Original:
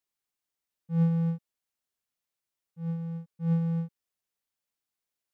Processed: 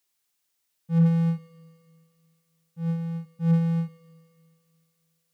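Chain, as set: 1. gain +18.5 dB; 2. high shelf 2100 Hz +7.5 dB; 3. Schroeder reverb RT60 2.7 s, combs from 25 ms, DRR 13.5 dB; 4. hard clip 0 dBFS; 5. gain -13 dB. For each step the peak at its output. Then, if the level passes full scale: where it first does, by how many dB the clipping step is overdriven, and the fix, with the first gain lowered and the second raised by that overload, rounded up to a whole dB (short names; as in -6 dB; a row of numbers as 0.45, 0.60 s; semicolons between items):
+3.0, +3.0, +3.0, 0.0, -13.0 dBFS; step 1, 3.0 dB; step 1 +15.5 dB, step 5 -10 dB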